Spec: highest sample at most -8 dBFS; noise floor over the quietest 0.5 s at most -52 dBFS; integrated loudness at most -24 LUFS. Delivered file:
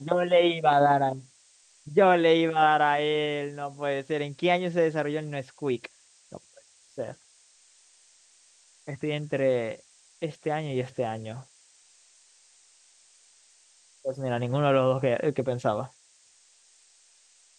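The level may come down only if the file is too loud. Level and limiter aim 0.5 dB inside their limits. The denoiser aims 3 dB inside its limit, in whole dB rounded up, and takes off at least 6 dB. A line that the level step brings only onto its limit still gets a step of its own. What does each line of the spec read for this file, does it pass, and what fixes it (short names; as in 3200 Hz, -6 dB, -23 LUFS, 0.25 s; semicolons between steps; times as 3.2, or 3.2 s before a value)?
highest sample -9.0 dBFS: OK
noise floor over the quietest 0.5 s -60 dBFS: OK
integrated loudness -26.0 LUFS: OK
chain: none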